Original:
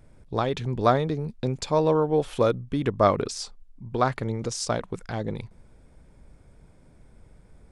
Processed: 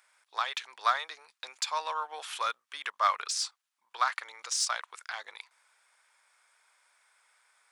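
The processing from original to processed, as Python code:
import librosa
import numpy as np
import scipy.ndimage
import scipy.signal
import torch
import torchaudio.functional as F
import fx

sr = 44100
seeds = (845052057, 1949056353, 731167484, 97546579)

p1 = scipy.signal.sosfilt(scipy.signal.butter(4, 1100.0, 'highpass', fs=sr, output='sos'), x)
p2 = 10.0 ** (-29.5 / 20.0) * np.tanh(p1 / 10.0 ** (-29.5 / 20.0))
y = p1 + (p2 * 10.0 ** (-6.0 / 20.0))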